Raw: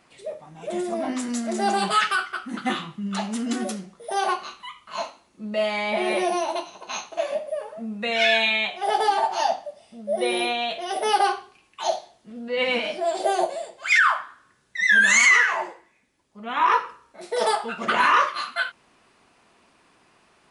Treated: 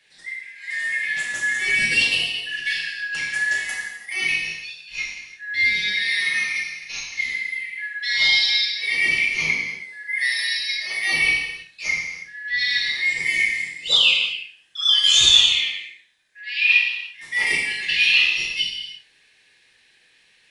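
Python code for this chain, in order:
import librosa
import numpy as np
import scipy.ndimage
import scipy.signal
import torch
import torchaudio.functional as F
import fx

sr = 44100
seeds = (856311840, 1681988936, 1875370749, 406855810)

y = fx.band_shuffle(x, sr, order='4123')
y = fx.rev_gated(y, sr, seeds[0], gate_ms=370, shape='falling', drr_db=-3.0)
y = F.gain(torch.from_numpy(y), -3.0).numpy()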